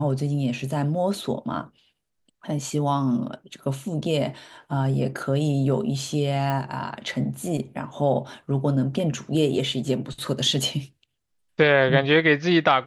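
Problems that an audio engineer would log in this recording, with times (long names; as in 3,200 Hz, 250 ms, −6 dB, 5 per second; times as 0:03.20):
0:06.50: click −15 dBFS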